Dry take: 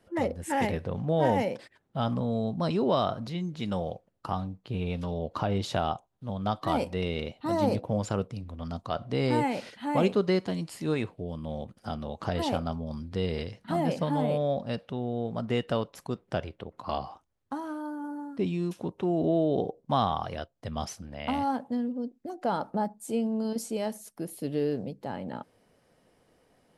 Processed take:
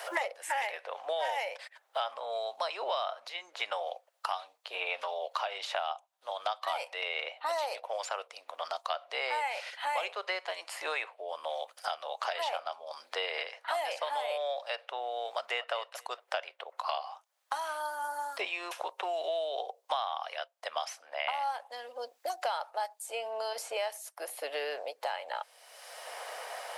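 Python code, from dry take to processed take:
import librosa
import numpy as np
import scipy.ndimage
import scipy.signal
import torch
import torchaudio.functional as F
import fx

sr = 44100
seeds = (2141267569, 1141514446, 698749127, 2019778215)

y = fx.echo_throw(x, sr, start_s=15.33, length_s=0.4, ms=230, feedback_pct=15, wet_db=-14.0)
y = fx.dynamic_eq(y, sr, hz=2400.0, q=1.4, threshold_db=-51.0, ratio=4.0, max_db=6)
y = scipy.signal.sosfilt(scipy.signal.butter(6, 610.0, 'highpass', fs=sr, output='sos'), y)
y = fx.band_squash(y, sr, depth_pct=100)
y = y * 10.0 ** (-1.0 / 20.0)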